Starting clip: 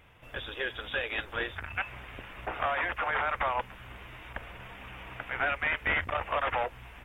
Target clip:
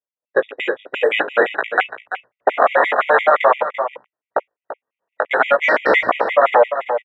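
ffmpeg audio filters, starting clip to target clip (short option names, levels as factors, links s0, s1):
-af "lowpass=3000,agate=range=0.00398:threshold=0.0112:ratio=16:detection=peak,highpass=270,afwtdn=0.00891,equalizer=f=520:w=0.9:g=11.5,acompressor=threshold=0.0251:ratio=1.5,flanger=delay=15.5:depth=4.7:speed=0.5,aecho=1:1:339:0.266,alimiter=level_in=15.8:limit=0.891:release=50:level=0:latency=1,afftfilt=real='re*gt(sin(2*PI*5.8*pts/sr)*(1-2*mod(floor(b*sr/1024/1900),2)),0)':imag='im*gt(sin(2*PI*5.8*pts/sr)*(1-2*mod(floor(b*sr/1024/1900),2)),0)':win_size=1024:overlap=0.75,volume=0.891"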